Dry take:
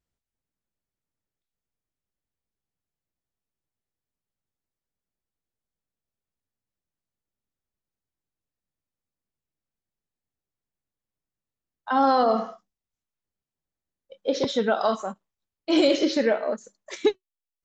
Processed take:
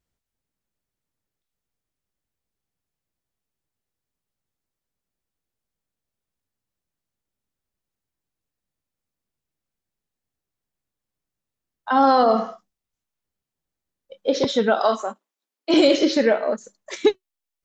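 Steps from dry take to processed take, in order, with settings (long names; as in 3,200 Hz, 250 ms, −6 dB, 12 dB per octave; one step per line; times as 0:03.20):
0:14.79–0:15.74: Butterworth high-pass 230 Hz 48 dB per octave
level +4 dB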